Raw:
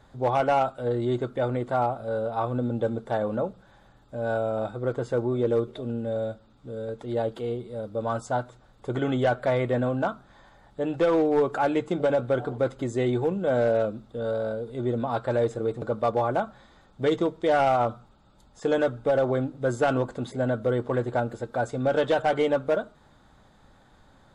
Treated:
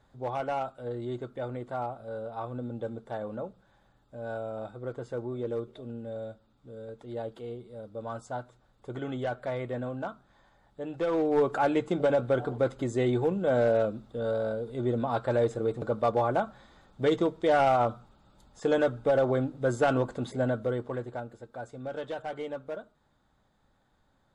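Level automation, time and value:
0:10.91 −9 dB
0:11.43 −1.5 dB
0:20.42 −1.5 dB
0:21.32 −13 dB

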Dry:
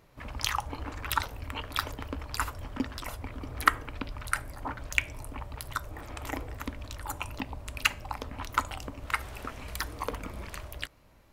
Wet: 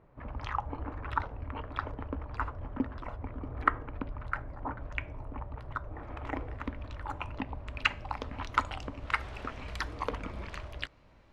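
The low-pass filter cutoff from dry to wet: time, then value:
0:05.83 1,300 Hz
0:06.44 2,200 Hz
0:07.60 2,200 Hz
0:08.21 4,200 Hz

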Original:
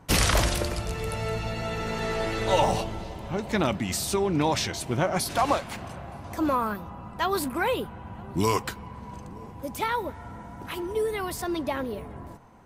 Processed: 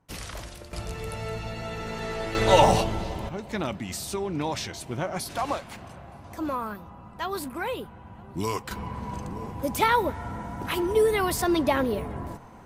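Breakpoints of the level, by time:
−16 dB
from 0:00.73 −3.5 dB
from 0:02.35 +5 dB
from 0:03.29 −5 dB
from 0:08.71 +6 dB

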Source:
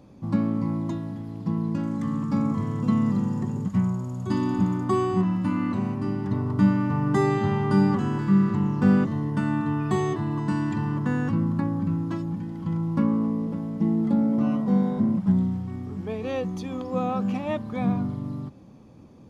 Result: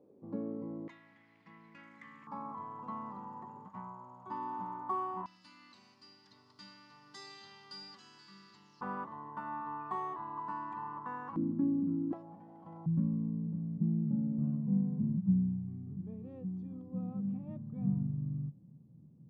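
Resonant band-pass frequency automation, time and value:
resonant band-pass, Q 4.8
430 Hz
from 0:00.88 2,100 Hz
from 0:02.27 940 Hz
from 0:05.26 4,700 Hz
from 0:08.81 1,000 Hz
from 0:11.36 290 Hz
from 0:12.13 710 Hz
from 0:12.86 150 Hz

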